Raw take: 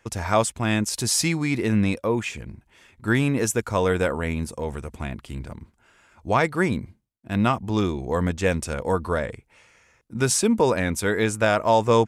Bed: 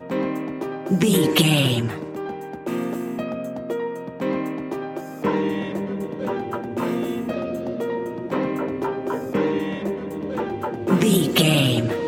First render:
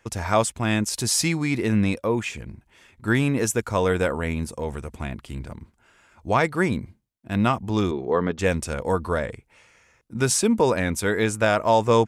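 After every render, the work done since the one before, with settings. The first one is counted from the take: 7.91–8.39 s: cabinet simulation 160–4300 Hz, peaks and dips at 410 Hz +8 dB, 1.2 kHz +5 dB, 2.4 kHz -3 dB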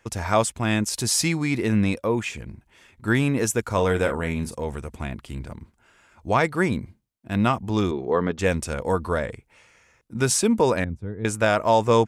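3.62–4.55 s: doubling 42 ms -11 dB; 10.84–11.25 s: band-pass filter 100 Hz, Q 1.1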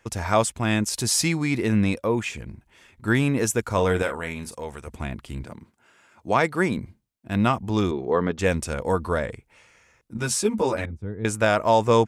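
4.02–4.87 s: bass shelf 450 Hz -9.5 dB; 5.44–6.78 s: high-pass 140 Hz; 10.17–11.02 s: three-phase chorus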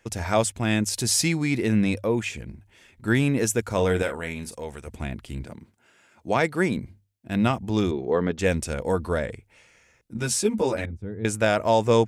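peaking EQ 1.1 kHz -6 dB 0.7 oct; hum notches 50/100 Hz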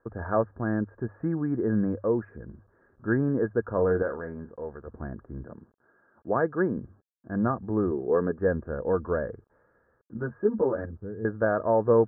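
bit crusher 10-bit; rippled Chebyshev low-pass 1.7 kHz, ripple 6 dB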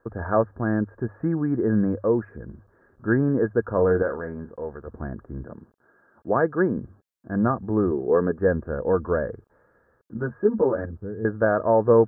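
trim +4 dB

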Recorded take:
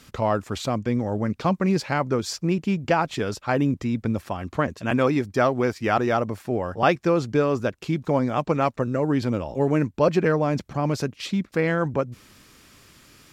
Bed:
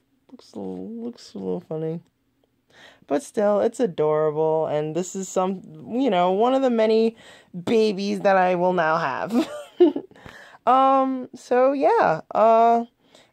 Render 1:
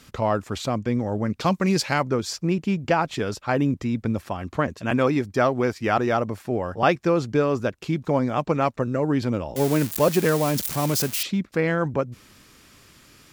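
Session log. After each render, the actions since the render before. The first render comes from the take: 1.40–2.03 s: treble shelf 2.8 kHz +10.5 dB; 9.56–11.23 s: zero-crossing glitches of -17.5 dBFS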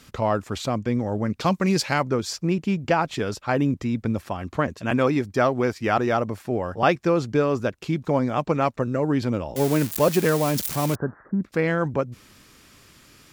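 10.95–11.43 s: steep low-pass 1.7 kHz 96 dB/octave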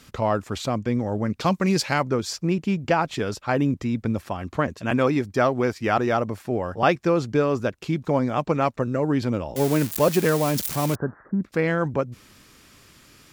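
no audible change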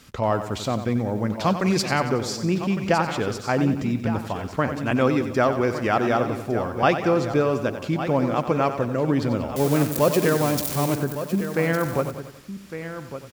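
delay 1158 ms -11 dB; bit-crushed delay 92 ms, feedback 55%, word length 8-bit, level -10 dB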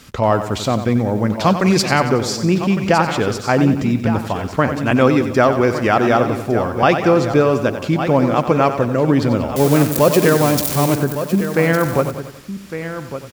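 trim +7 dB; peak limiter -2 dBFS, peak gain reduction 3 dB

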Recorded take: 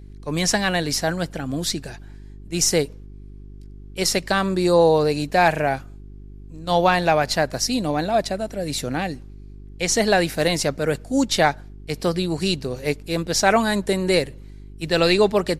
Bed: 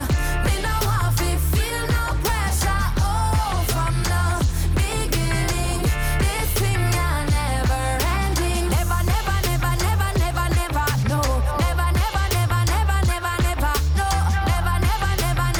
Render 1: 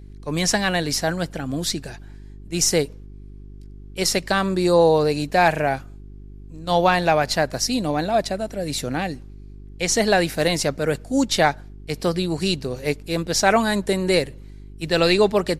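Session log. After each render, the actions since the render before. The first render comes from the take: no audible change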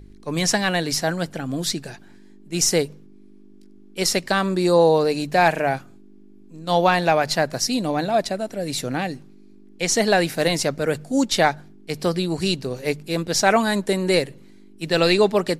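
de-hum 50 Hz, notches 3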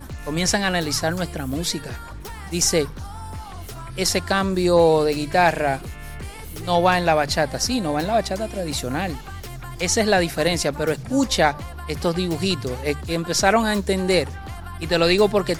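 add bed -14 dB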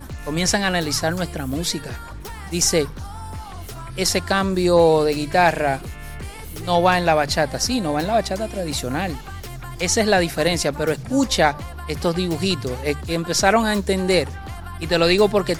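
trim +1 dB

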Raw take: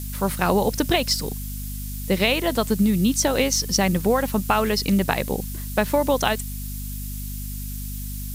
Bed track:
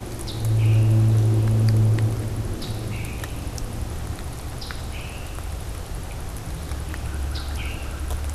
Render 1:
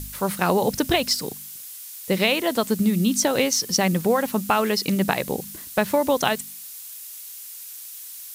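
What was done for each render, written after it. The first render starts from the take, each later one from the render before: de-hum 50 Hz, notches 5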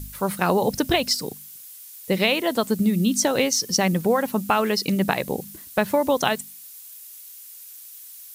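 noise reduction 6 dB, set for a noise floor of -39 dBFS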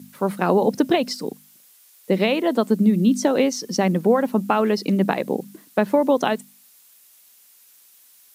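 high-pass 210 Hz 24 dB/octave; tilt EQ -3 dB/octave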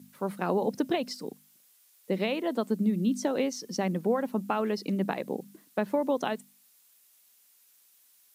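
trim -9.5 dB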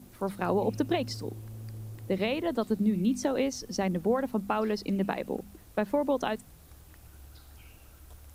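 add bed track -23.5 dB

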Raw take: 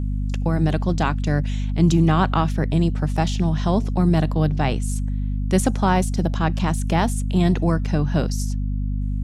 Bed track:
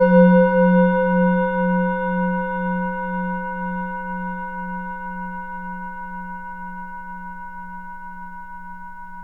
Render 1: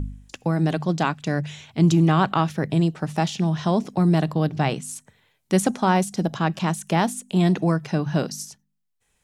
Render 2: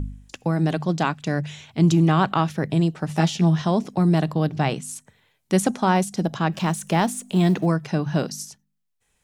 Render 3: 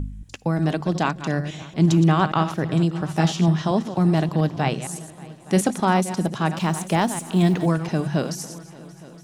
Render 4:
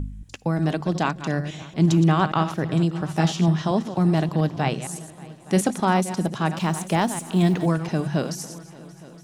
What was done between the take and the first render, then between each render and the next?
de-hum 50 Hz, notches 5
3.08–3.62 s: doubling 12 ms -2.5 dB; 6.52–7.66 s: companding laws mixed up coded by mu
chunks repeated in reverse 116 ms, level -11 dB; multi-head delay 289 ms, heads all three, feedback 48%, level -24 dB
trim -1 dB

